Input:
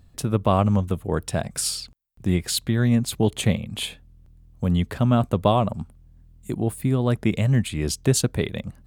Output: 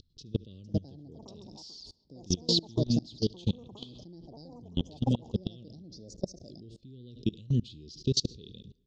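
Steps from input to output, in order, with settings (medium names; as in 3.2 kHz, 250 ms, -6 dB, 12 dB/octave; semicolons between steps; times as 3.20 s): upward compressor, threshold -38 dBFS; inverse Chebyshev band-stop 690–2200 Hz, stop band 40 dB; tilt shelf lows -6 dB, about 1.4 kHz; ever faster or slower copies 513 ms, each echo +6 st, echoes 2; steep low-pass 5.6 kHz 48 dB/octave; feedback delay 71 ms, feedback 30%, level -20 dB; on a send at -23 dB: reverberation RT60 2.0 s, pre-delay 65 ms; on the sum: level held to a coarse grid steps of 24 dB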